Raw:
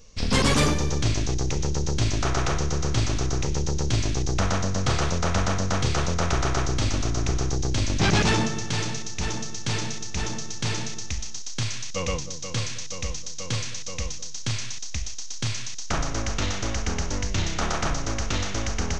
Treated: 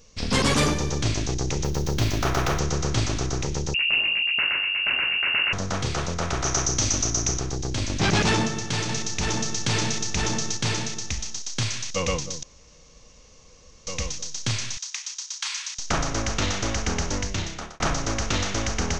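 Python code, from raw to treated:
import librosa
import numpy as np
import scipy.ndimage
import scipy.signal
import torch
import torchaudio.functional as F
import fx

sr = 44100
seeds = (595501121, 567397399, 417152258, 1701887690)

y = fx.median_filter(x, sr, points=5, at=(1.64, 2.59))
y = fx.freq_invert(y, sr, carrier_hz=2800, at=(3.74, 5.53))
y = fx.peak_eq(y, sr, hz=6100.0, db=15.0, octaves=0.45, at=(6.44, 7.39))
y = fx.env_flatten(y, sr, amount_pct=70, at=(8.89, 10.57))
y = fx.steep_highpass(y, sr, hz=850.0, slope=72, at=(14.77, 15.79))
y = fx.edit(y, sr, fx.room_tone_fill(start_s=12.43, length_s=1.44),
    fx.fade_out_span(start_s=17.14, length_s=0.66), tone=tone)
y = fx.low_shelf(y, sr, hz=78.0, db=-6.0)
y = fx.rider(y, sr, range_db=3, speed_s=2.0)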